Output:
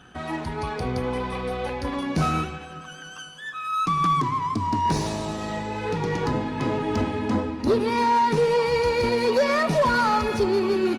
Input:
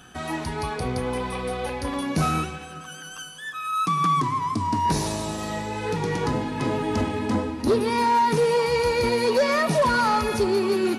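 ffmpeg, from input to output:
-af "aecho=1:1:80:0.0708,adynamicsmooth=sensitivity=3.5:basefreq=5700" -ar 48000 -c:a libopus -b:a 32k

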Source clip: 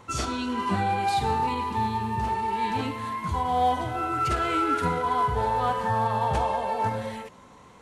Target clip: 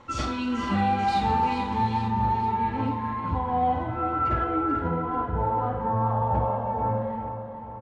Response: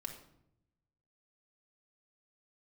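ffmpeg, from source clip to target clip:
-filter_complex "[0:a]asetnsamples=n=441:p=0,asendcmd='2.08 lowpass f 1600;4.44 lowpass f 1000',lowpass=4700,aecho=1:1:438|876|1314|1752|2190|2628:0.335|0.178|0.0941|0.0499|0.0264|0.014[s0];[1:a]atrim=start_sample=2205,atrim=end_sample=3969[s1];[s0][s1]afir=irnorm=-1:irlink=0,volume=1.41"

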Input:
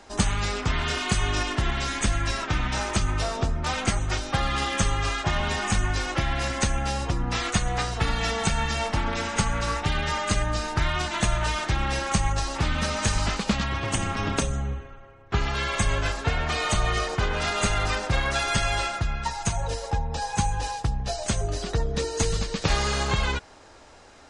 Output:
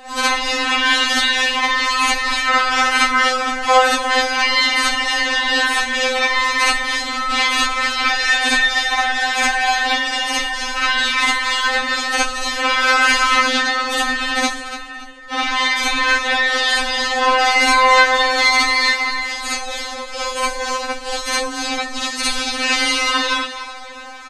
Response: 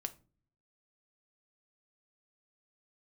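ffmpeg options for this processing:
-filter_complex "[0:a]acrossover=split=460 5300:gain=0.126 1 0.141[s0][s1][s2];[s0][s1][s2]amix=inputs=3:normalize=0,asplit=2[s3][s4];[s4]acompressor=threshold=0.01:ratio=6,volume=0.794[s5];[s3][s5]amix=inputs=2:normalize=0,aecho=1:1:285|570|855|1140:0.224|0.0828|0.0306|0.0113,asplit=3[s6][s7][s8];[s7]asetrate=29433,aresample=44100,atempo=1.49831,volume=0.631[s9];[s8]asetrate=58866,aresample=44100,atempo=0.749154,volume=0.708[s10];[s6][s9][s10]amix=inputs=3:normalize=0,asplit=2[s11][s12];[1:a]atrim=start_sample=2205,adelay=60[s13];[s12][s13]afir=irnorm=-1:irlink=0,volume=2[s14];[s11][s14]amix=inputs=2:normalize=0,afftfilt=real='re*3.46*eq(mod(b,12),0)':imag='im*3.46*eq(mod(b,12),0)':win_size=2048:overlap=0.75,volume=2.24"

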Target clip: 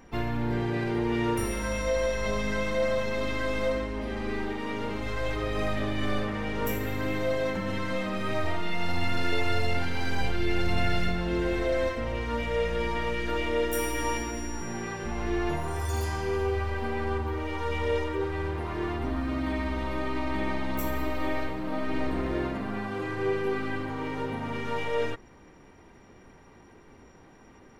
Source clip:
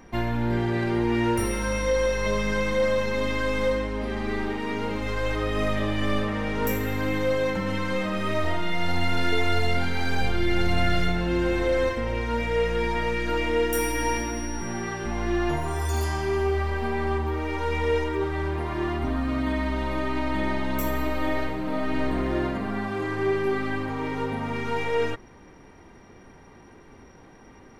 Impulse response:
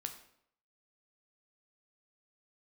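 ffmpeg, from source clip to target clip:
-filter_complex "[0:a]asplit=2[s0][s1];[s1]asetrate=55563,aresample=44100,atempo=0.793701,volume=0.282[s2];[s0][s2]amix=inputs=2:normalize=0,volume=0.631"

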